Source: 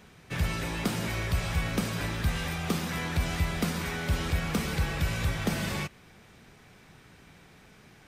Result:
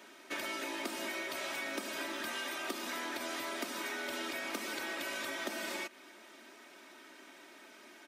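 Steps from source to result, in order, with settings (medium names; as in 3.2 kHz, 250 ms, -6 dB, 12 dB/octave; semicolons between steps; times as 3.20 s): high-pass 280 Hz 24 dB/octave; comb 3.2 ms, depth 80%; compression, threshold -36 dBFS, peak gain reduction 11.5 dB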